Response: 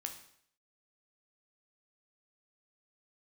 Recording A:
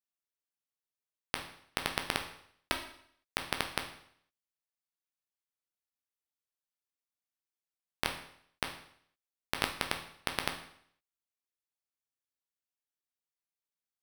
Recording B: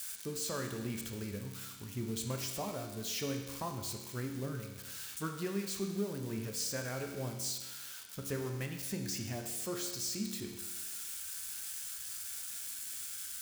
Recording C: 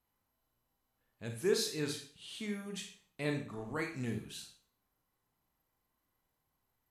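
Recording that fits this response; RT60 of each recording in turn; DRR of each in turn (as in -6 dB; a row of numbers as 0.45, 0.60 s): A; 0.65, 1.2, 0.45 s; 3.5, 2.5, 2.5 dB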